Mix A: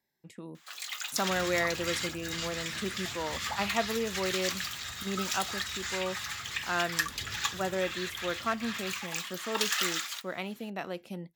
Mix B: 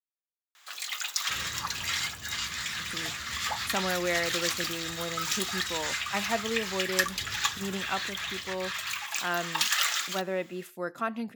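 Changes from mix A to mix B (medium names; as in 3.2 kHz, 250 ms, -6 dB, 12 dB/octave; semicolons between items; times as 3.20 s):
speech: entry +2.55 s; first sound +3.5 dB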